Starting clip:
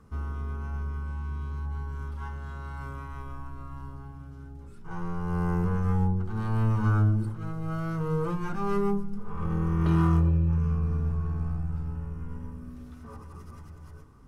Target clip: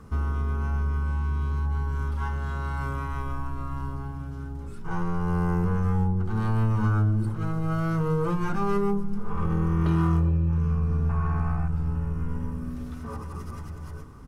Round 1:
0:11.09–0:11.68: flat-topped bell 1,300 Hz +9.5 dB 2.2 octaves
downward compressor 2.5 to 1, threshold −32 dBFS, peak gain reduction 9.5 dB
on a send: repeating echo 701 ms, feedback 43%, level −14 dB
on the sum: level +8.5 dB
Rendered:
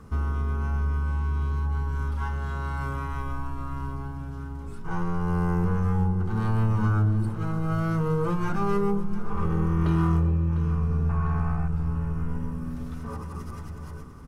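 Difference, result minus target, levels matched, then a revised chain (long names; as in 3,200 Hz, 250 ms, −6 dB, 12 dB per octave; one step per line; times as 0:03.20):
echo-to-direct +10.5 dB
0:11.09–0:11.68: flat-topped bell 1,300 Hz +9.5 dB 2.2 octaves
downward compressor 2.5 to 1, threshold −32 dBFS, peak gain reduction 9.5 dB
on a send: repeating echo 701 ms, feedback 43%, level −24.5 dB
on the sum: level +8.5 dB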